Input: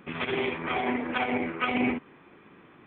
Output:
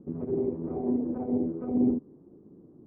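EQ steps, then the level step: ladder low-pass 500 Hz, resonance 20%; +7.5 dB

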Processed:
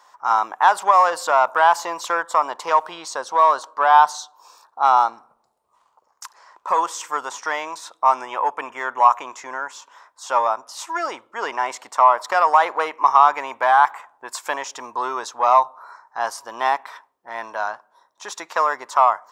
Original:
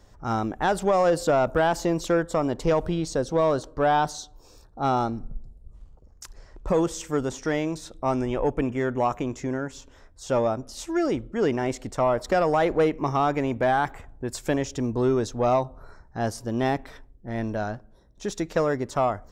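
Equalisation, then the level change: resonant high-pass 1000 Hz, resonance Q 4.8; +4.0 dB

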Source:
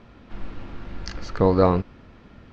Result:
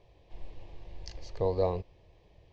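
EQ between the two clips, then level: fixed phaser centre 570 Hz, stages 4; -8.5 dB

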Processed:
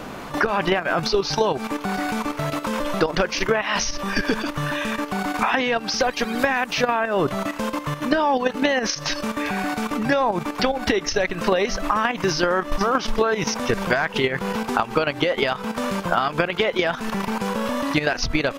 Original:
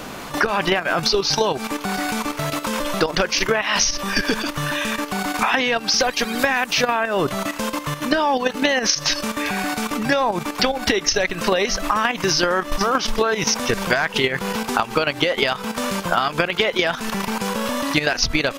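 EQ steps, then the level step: high shelf 2800 Hz -9 dB; 0.0 dB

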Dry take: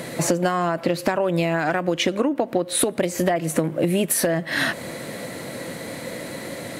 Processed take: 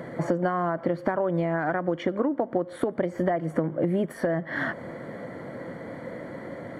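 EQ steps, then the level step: polynomial smoothing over 41 samples; -4.0 dB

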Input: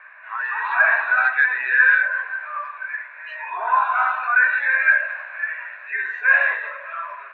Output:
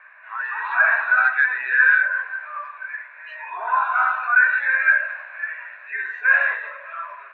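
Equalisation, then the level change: dynamic EQ 1400 Hz, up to +6 dB, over -30 dBFS, Q 4.4; -3.0 dB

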